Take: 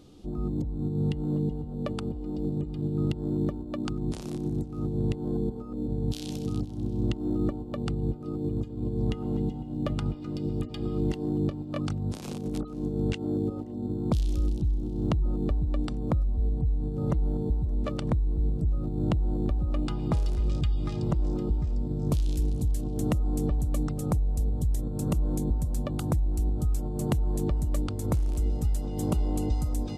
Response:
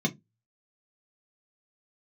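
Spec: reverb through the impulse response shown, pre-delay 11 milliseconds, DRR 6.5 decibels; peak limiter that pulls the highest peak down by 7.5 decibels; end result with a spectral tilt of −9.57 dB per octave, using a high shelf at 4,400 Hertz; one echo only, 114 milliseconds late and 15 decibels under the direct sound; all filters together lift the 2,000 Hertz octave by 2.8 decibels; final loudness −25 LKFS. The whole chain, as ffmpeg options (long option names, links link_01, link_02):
-filter_complex "[0:a]equalizer=frequency=2000:width_type=o:gain=5,highshelf=frequency=4400:gain=-5.5,alimiter=limit=-20.5dB:level=0:latency=1,aecho=1:1:114:0.178,asplit=2[link_01][link_02];[1:a]atrim=start_sample=2205,adelay=11[link_03];[link_02][link_03]afir=irnorm=-1:irlink=0,volume=-14dB[link_04];[link_01][link_04]amix=inputs=2:normalize=0,volume=0.5dB"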